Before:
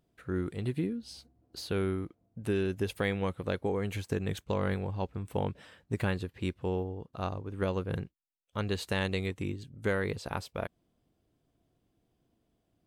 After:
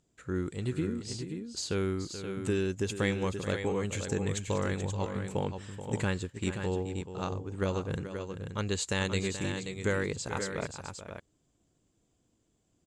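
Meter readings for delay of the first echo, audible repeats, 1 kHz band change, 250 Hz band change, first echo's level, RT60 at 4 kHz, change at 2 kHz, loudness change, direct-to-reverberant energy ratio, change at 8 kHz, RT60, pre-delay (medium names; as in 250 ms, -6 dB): 430 ms, 2, 0.0 dB, +1.0 dB, -11.5 dB, no reverb, +1.5 dB, +0.5 dB, no reverb, +12.0 dB, no reverb, no reverb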